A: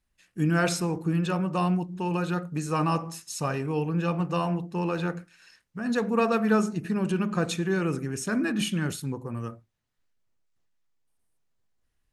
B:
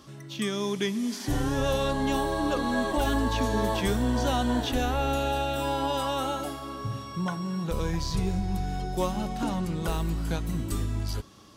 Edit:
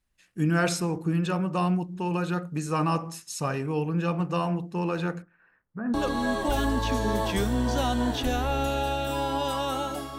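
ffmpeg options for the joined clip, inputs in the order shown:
-filter_complex "[0:a]asettb=1/sr,asplit=3[a][b][c];[a]atrim=end=5.224[d];[b]atrim=start=5.22:end=5.94,asetpts=PTS-STARTPTS,afade=t=in:d=0.004:c=qsin,afade=t=out:st=0.716:d=0.004:c=qsin,lowpass=f=1.6k:w=0.5412,lowpass=f=1.6k:w=1.3066[e];[c]atrim=start=5.936[f];[d][e]acrossfade=d=0.004:c1=hsin:c2=qsin[g];[g][f]acrossfade=d=0.004:c1=qsin:c2=hsin,apad=whole_dur=10.18,atrim=end=10.18,atrim=end=5.942[h];[1:a]atrim=start=2.428:end=6.67[i];[h][i]acrossfade=d=0.004:c1=hsin:c2=hsin"

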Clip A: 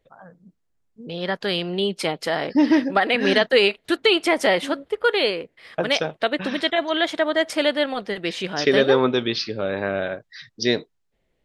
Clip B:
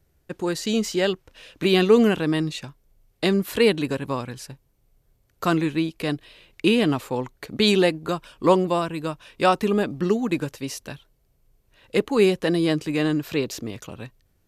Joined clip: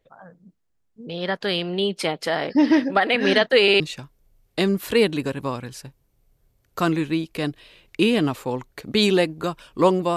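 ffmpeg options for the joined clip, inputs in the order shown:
-filter_complex "[0:a]apad=whole_dur=10.16,atrim=end=10.16,asplit=3[a][b][c];[a]atrim=end=3.682[d];[b]atrim=start=3.618:end=3.682[e];[c]atrim=start=3.618:end=3.682[f];[1:a]atrim=start=2.448:end=8.81[g];[d][e]acrossfade=d=0.004:c1=hsin:c2=hsin[h];[h][f]acrossfade=d=0.004:c1=hsin:c2=hsin[i];[i][g]acrossfade=d=0.004:c1=hsin:c2=hsin"

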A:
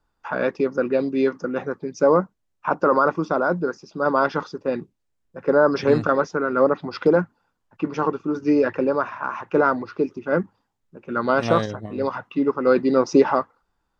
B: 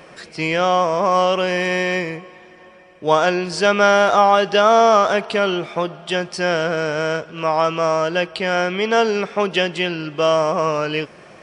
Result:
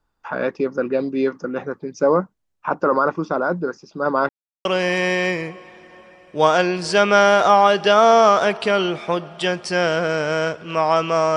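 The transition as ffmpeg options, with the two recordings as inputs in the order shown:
-filter_complex "[0:a]apad=whole_dur=11.36,atrim=end=11.36,asplit=2[a][b];[a]atrim=end=4.29,asetpts=PTS-STARTPTS,afade=t=out:st=4.286:d=0.004:c=hsin[c];[b]atrim=start=4.29:end=4.65,asetpts=PTS-STARTPTS,volume=0[d];[1:a]atrim=start=1.33:end=8.04,asetpts=PTS-STARTPTS,afade=t=in:d=0.004:c=hsin[e];[c][d][e]concat=n=3:v=0:a=1"

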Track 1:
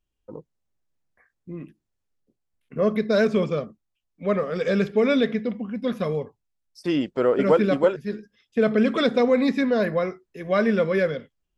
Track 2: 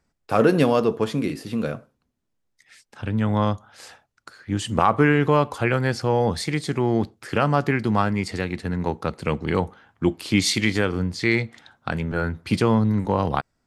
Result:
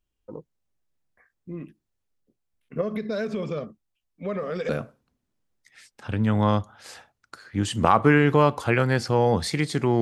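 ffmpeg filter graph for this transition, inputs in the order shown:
-filter_complex "[0:a]asettb=1/sr,asplit=3[a][b][c];[a]atrim=end=2.814[d];[b]atrim=start=2.81:end=4.69,asetpts=PTS-STARTPTS,afade=t=in:d=0.004:c=qsin,afade=t=out:st=1.876:d=0.004:c=qsin,acompressor=threshold=-25dB:ratio=6:attack=3.2:release=140:knee=1:detection=peak[e];[c]atrim=start=4.686[f];[d][e]acrossfade=d=0.004:c1=hsin:c2=qsin[g];[g][f]acrossfade=d=0.004:c1=qsin:c2=hsin,apad=whole_dur=10.01,atrim=end=10.01,atrim=end=4.692[h];[1:a]atrim=start=1.628:end=6.95[i];[h][i]acrossfade=d=0.004:c1=hsin:c2=hsin"

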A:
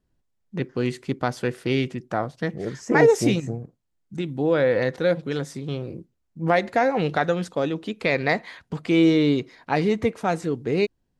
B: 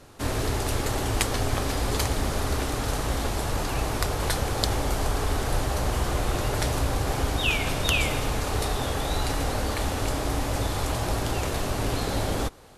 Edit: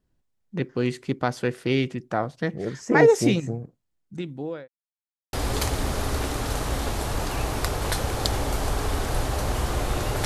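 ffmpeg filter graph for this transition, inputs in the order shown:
-filter_complex "[0:a]apad=whole_dur=10.25,atrim=end=10.25,asplit=2[a][b];[a]atrim=end=4.68,asetpts=PTS-STARTPTS,afade=t=out:st=3.64:d=1.04:c=qsin[c];[b]atrim=start=4.68:end=5.33,asetpts=PTS-STARTPTS,volume=0[d];[1:a]atrim=start=1.71:end=6.63,asetpts=PTS-STARTPTS,afade=t=in:d=0.004:c=hsin[e];[c][d][e]concat=n=3:v=0:a=1"

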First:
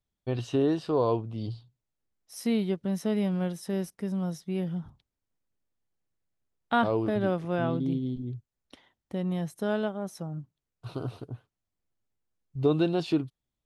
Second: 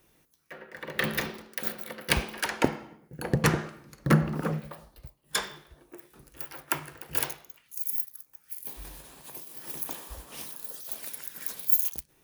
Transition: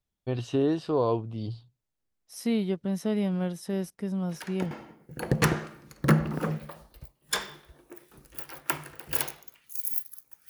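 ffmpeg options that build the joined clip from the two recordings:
-filter_complex "[1:a]asplit=2[a][b];[0:a]apad=whole_dur=10.49,atrim=end=10.49,atrim=end=4.712[c];[b]atrim=start=2.728:end=8.51[d];[a]atrim=start=2.31:end=2.73,asetpts=PTS-STARTPTS,volume=-13dB,afade=t=in:d=0.004:c=hsin,afade=t=out:st=0.416:d=0.004:c=hsin,adelay=189189S[e];[c][d]acrossfade=d=0.004:c1=hsin:c2=hsin[f];[f][e]amix=inputs=2:normalize=0"

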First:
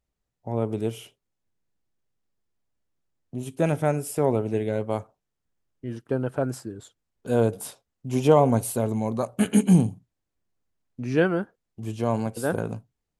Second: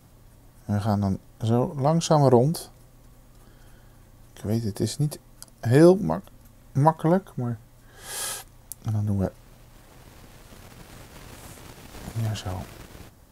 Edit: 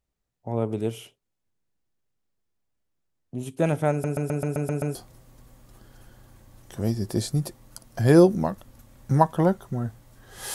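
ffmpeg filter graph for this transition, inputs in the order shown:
-filter_complex "[0:a]apad=whole_dur=10.54,atrim=end=10.54,asplit=8[a][b][c][d][e][f][g][h];[a]atrim=end=4.042[i];[b]atrim=start=3.908:end=4.042[j];[c]atrim=start=3.908:end=4.042[k];[d]atrim=start=3.908:end=4.042[l];[e]atrim=start=3.908:end=4.042[m];[f]atrim=start=3.908:end=4.042[n];[g]atrim=start=3.908:end=4.042[o];[h]atrim=start=3.908:end=4.042[p];[1:a]atrim=start=2.608:end=8.2[q];[i][j]acrossfade=d=0.004:c1=hsin:c2=hsin[r];[r][k]acrossfade=d=0.004:c1=hsin:c2=hsin[s];[s][l]acrossfade=d=0.004:c1=hsin:c2=hsin[t];[t][m]acrossfade=d=0.004:c1=hsin:c2=hsin[u];[u][n]acrossfade=d=0.004:c1=hsin:c2=hsin[v];[v][o]acrossfade=d=0.004:c1=hsin:c2=hsin[w];[w][p]acrossfade=d=0.004:c1=hsin:c2=hsin[x];[x][q]acrossfade=d=0.004:c1=hsin:c2=hsin"

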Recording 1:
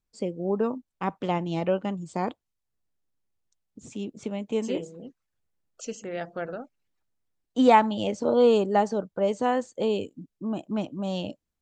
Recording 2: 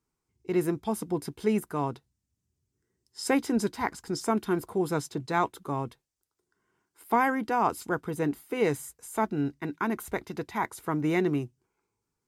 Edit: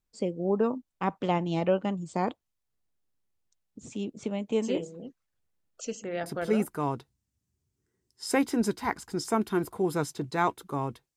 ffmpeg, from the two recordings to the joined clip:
-filter_complex "[0:a]apad=whole_dur=11.16,atrim=end=11.16,atrim=end=6.77,asetpts=PTS-STARTPTS[a];[1:a]atrim=start=1.19:end=6.12,asetpts=PTS-STARTPTS[b];[a][b]acrossfade=d=0.54:c1=log:c2=log"

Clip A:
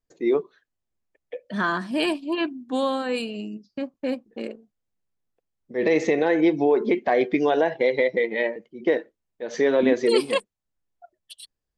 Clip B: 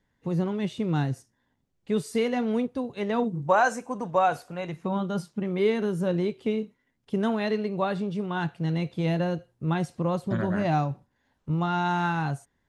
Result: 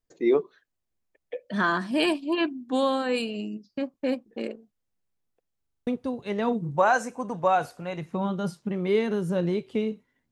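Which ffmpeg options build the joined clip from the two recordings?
-filter_complex "[0:a]apad=whole_dur=10.31,atrim=end=10.31,asplit=7[a][b][c][d][e][f][g];[a]atrim=end=5.632[h];[b]atrim=start=5.588:end=5.632[i];[c]atrim=start=5.588:end=5.632[j];[d]atrim=start=5.588:end=5.632[k];[e]atrim=start=5.588:end=5.632[l];[f]atrim=start=5.588:end=5.632[m];[g]atrim=start=5.588:end=5.632[n];[1:a]atrim=start=2.578:end=7.02[o];[h][i]acrossfade=d=0.004:c1=hsin:c2=hsin[p];[p][j]acrossfade=d=0.004:c1=hsin:c2=hsin[q];[q][k]acrossfade=d=0.004:c1=hsin:c2=hsin[r];[r][l]acrossfade=d=0.004:c1=hsin:c2=hsin[s];[s][m]acrossfade=d=0.004:c1=hsin:c2=hsin[t];[t][n]acrossfade=d=0.004:c1=hsin:c2=hsin[u];[u][o]acrossfade=d=0.004:c1=hsin:c2=hsin"

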